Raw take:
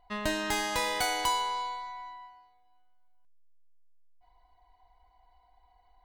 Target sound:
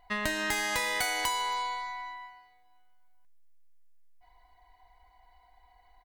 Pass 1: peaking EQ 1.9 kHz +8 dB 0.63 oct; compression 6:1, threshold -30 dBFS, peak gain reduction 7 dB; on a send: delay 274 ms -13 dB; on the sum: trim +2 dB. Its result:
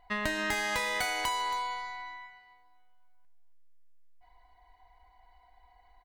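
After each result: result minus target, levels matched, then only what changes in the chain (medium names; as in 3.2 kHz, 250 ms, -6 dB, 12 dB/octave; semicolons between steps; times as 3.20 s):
echo-to-direct +11.5 dB; 8 kHz band -3.0 dB
change: delay 274 ms -24.5 dB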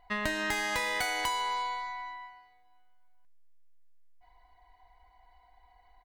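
8 kHz band -3.5 dB
add after compression: treble shelf 5.4 kHz +7 dB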